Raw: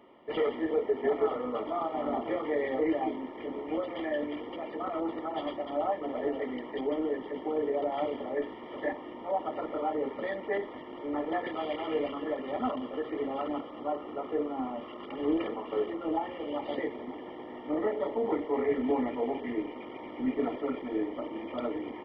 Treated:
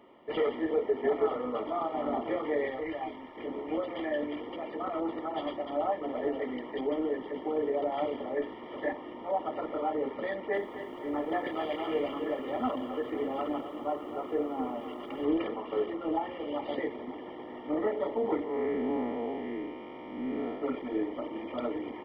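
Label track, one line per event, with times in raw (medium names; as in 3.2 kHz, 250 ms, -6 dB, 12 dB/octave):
2.700000	3.370000	peaking EQ 320 Hz -9.5 dB 2.1 oct
10.280000	15.250000	bit-crushed delay 258 ms, feedback 55%, word length 10-bit, level -11.5 dB
18.440000	20.620000	spectral blur width 177 ms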